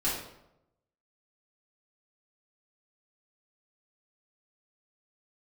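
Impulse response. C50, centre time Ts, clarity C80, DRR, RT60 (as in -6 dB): 2.5 dB, 51 ms, 6.0 dB, -9.5 dB, 0.85 s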